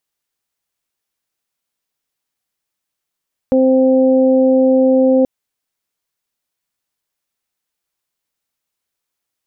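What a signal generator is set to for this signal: steady additive tone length 1.73 s, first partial 261 Hz, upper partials 0.5/-17.5 dB, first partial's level -11.5 dB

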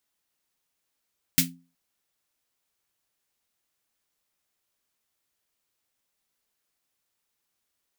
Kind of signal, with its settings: snare drum length 0.37 s, tones 170 Hz, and 260 Hz, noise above 1.9 kHz, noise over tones 9 dB, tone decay 0.37 s, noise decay 0.16 s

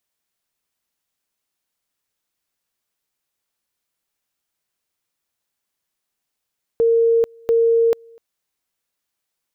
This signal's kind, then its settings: two-level tone 460 Hz -12 dBFS, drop 30 dB, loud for 0.44 s, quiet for 0.25 s, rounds 2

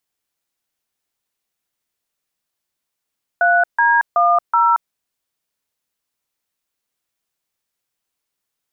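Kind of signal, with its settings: DTMF "3D10", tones 227 ms, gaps 148 ms, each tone -13.5 dBFS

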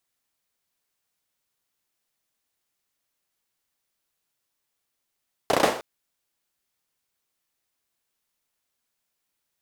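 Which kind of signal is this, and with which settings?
hand clap length 0.31 s, bursts 5, apart 33 ms, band 520 Hz, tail 0.47 s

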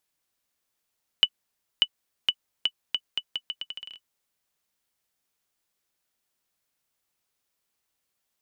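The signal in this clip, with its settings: bouncing ball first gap 0.59 s, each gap 0.79, 2.97 kHz, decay 58 ms -6 dBFS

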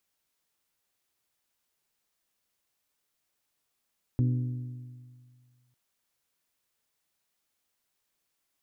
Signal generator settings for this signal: metal hit bell, lowest mode 124 Hz, modes 5, decay 1.94 s, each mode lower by 7.5 dB, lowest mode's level -21 dB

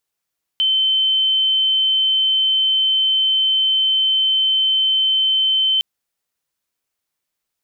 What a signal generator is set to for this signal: tone sine 3.08 kHz -13.5 dBFS 5.21 s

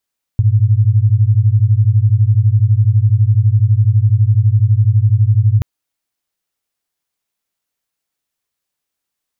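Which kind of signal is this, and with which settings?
beating tones 101 Hz, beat 12 Hz, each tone -11 dBFS 5.23 s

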